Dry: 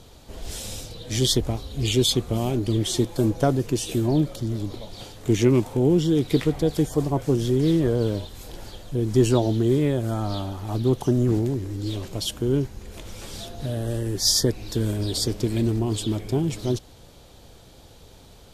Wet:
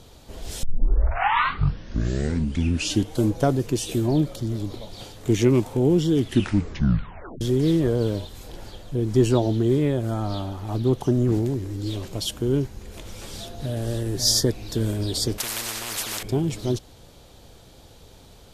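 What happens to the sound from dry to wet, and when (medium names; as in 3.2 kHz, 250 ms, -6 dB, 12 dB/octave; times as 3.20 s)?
0.63 s: tape start 2.71 s
6.11 s: tape stop 1.30 s
8.39–11.32 s: treble shelf 4.8 kHz -4.5 dB
13.22–13.86 s: echo throw 540 ms, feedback 40%, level -7 dB
15.38–16.23 s: spectrum-flattening compressor 10:1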